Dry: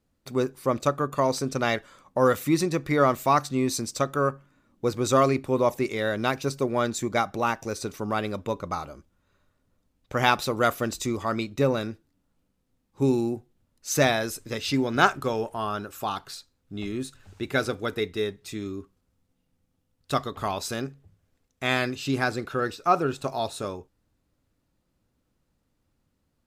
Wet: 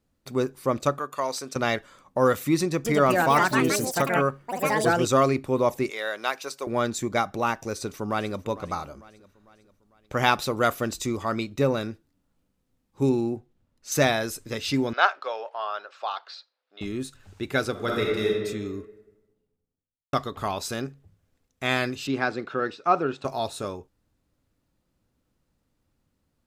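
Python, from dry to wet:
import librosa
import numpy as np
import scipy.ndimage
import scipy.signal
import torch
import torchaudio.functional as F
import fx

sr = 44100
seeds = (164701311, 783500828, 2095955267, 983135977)

y = fx.highpass(x, sr, hz=910.0, slope=6, at=(0.99, 1.56))
y = fx.echo_pitch(y, sr, ms=257, semitones=4, count=3, db_per_echo=-3.0, at=(2.59, 5.37))
y = fx.highpass(y, sr, hz=640.0, slope=12, at=(5.9, 6.67))
y = fx.echo_throw(y, sr, start_s=7.67, length_s=0.75, ms=450, feedback_pct=50, wet_db=-17.5)
y = fx.lowpass(y, sr, hz=3900.0, slope=6, at=(13.09, 13.92))
y = fx.ellip_bandpass(y, sr, low_hz=560.0, high_hz=4600.0, order=3, stop_db=80, at=(14.93, 16.81))
y = fx.reverb_throw(y, sr, start_s=17.71, length_s=0.58, rt60_s=1.4, drr_db=-2.0)
y = fx.studio_fade_out(y, sr, start_s=18.79, length_s=1.34)
y = fx.bandpass_edges(y, sr, low_hz=170.0, high_hz=4000.0, at=(22.07, 23.25))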